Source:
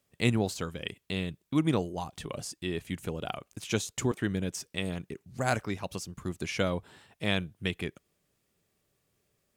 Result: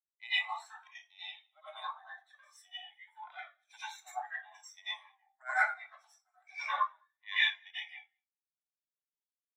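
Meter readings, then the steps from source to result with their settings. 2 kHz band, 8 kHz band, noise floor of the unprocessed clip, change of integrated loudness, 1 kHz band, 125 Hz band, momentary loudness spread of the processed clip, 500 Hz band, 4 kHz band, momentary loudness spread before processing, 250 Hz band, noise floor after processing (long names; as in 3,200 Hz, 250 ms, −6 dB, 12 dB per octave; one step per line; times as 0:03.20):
+3.0 dB, −17.5 dB, −77 dBFS, −3.0 dB, +1.0 dB, below −40 dB, 21 LU, −21.5 dB, −1.0 dB, 10 LU, below −40 dB, below −85 dBFS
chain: lower of the sound and its delayed copy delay 0.53 ms
Butterworth high-pass 680 Hz 48 dB per octave
on a send: repeating echo 206 ms, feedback 25%, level −16 dB
on the sum: dense smooth reverb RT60 0.54 s, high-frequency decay 0.95×, pre-delay 75 ms, DRR −8.5 dB
every bin expanded away from the loudest bin 2.5 to 1
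level −1.5 dB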